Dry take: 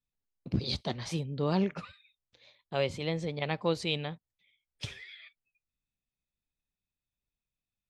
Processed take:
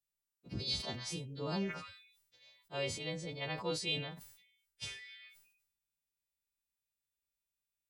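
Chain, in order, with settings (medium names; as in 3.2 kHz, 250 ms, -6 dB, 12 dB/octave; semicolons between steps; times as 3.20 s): partials quantised in pitch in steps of 2 st; decay stretcher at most 71 dB/s; trim -8.5 dB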